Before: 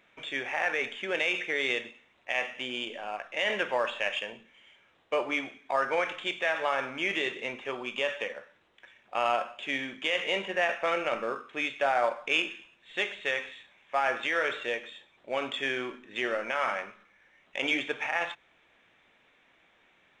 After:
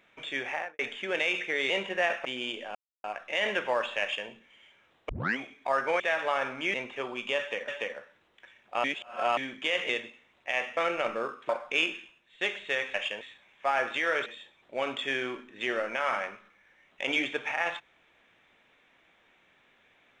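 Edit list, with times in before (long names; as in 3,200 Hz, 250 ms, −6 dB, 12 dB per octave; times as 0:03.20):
0:00.50–0:00.79: fade out and dull
0:01.70–0:02.58: swap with 0:10.29–0:10.84
0:03.08: splice in silence 0.29 s
0:04.05–0:04.32: duplicate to 0:13.50
0:05.13: tape start 0.29 s
0:06.04–0:06.37: remove
0:07.11–0:07.43: remove
0:08.08–0:08.37: repeat, 2 plays
0:09.24–0:09.77: reverse
0:11.56–0:12.05: remove
0:12.55–0:12.97: fade out linear, to −10 dB
0:14.55–0:14.81: remove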